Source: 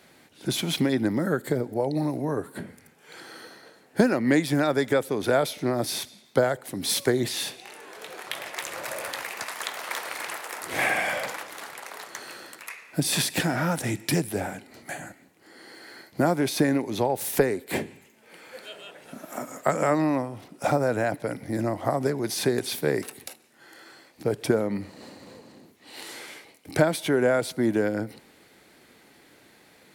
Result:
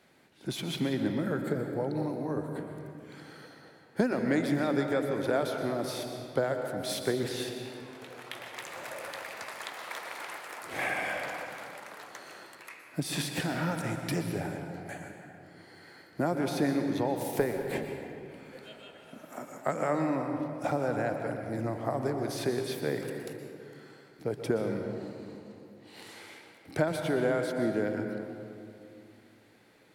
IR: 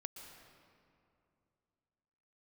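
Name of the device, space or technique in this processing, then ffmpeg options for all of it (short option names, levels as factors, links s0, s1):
swimming-pool hall: -filter_complex "[1:a]atrim=start_sample=2205[s0];[0:a][s0]afir=irnorm=-1:irlink=0,highshelf=f=4500:g=-6,volume=0.794"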